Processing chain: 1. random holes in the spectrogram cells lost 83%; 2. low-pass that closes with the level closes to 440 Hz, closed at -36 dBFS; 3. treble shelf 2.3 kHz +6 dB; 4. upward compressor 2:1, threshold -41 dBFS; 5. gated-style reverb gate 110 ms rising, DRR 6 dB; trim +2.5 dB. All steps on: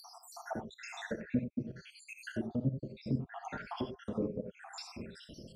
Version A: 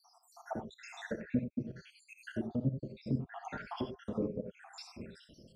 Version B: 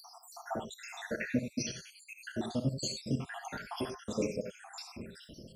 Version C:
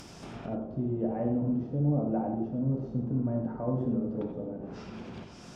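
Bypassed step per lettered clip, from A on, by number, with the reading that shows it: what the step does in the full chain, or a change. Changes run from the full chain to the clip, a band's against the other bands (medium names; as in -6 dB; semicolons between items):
4, 4 kHz band -3.0 dB; 2, 8 kHz band +9.5 dB; 1, 1 kHz band -4.0 dB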